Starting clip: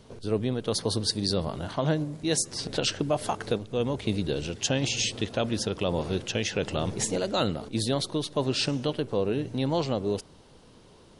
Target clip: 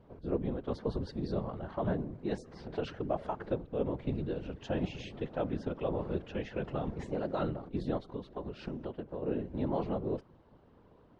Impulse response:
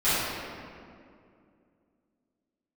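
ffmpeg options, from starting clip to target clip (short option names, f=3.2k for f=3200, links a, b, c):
-filter_complex "[0:a]lowpass=1.5k,asplit=3[a][b][c];[a]afade=t=out:st=7.97:d=0.02[d];[b]acompressor=threshold=-30dB:ratio=6,afade=t=in:st=7.97:d=0.02,afade=t=out:st=9.22:d=0.02[e];[c]afade=t=in:st=9.22:d=0.02[f];[d][e][f]amix=inputs=3:normalize=0,afftfilt=real='hypot(re,im)*cos(2*PI*random(0))':imag='hypot(re,im)*sin(2*PI*random(1))':win_size=512:overlap=0.75"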